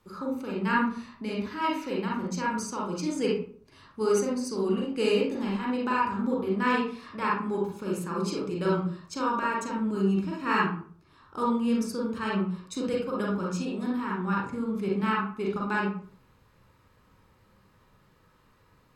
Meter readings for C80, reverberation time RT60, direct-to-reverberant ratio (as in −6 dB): 7.5 dB, 0.50 s, −4.0 dB